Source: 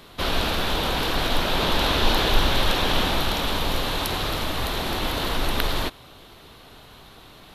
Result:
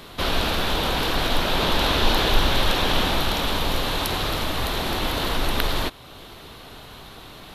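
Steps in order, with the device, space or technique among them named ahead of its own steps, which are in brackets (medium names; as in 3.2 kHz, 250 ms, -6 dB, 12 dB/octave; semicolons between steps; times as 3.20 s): parallel compression (in parallel at -2 dB: compression, threshold -39 dBFS, peak gain reduction 24.5 dB)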